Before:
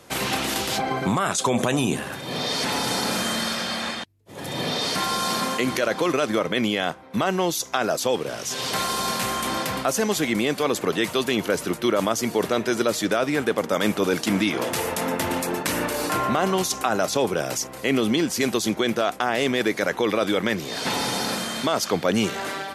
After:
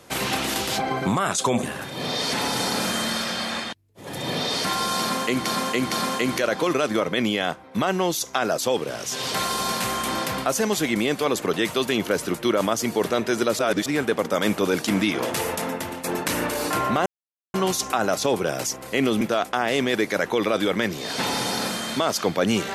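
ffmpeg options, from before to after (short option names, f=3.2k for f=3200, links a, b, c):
-filter_complex "[0:a]asplit=9[a][b][c][d][e][f][g][h][i];[a]atrim=end=1.632[j];[b]atrim=start=1.938:end=5.772[k];[c]atrim=start=5.308:end=5.772[l];[d]atrim=start=5.308:end=12.982[m];[e]atrim=start=12.978:end=13.252,asetpts=PTS-STARTPTS,areverse[n];[f]atrim=start=13.248:end=15.43,asetpts=PTS-STARTPTS,afade=t=out:st=1.642:d=0.54:silence=0.266073[o];[g]atrim=start=15.43:end=16.45,asetpts=PTS-STARTPTS,afade=t=in:d=0.004:c=hsin:silence=0.266073,afade=t=out:st=1.016:d=0.004:c=hsin,apad=pad_dur=0.48[p];[h]atrim=start=16.45:end=18.122,asetpts=PTS-STARTPTS,afade=t=in:d=0.004:c=hsin[q];[i]atrim=start=18.878[r];[j][k]acrossfade=d=0.004:c1=hsin:c2=hsin[s];[s][l]acrossfade=d=0.004:c1=hsin:c2=hsin[t];[t][m]acrossfade=d=0.004:c1=hsin:c2=hsin[u];[u][n]acrossfade=d=0.004:c1=hsin:c2=hsin[v];[o][p][q]concat=n=3:v=0:a=1[w];[v][w]acrossfade=d=0.004:c1=hsin:c2=hsin[x];[x][r]acrossfade=d=0.004:c1=hsin:c2=hsin"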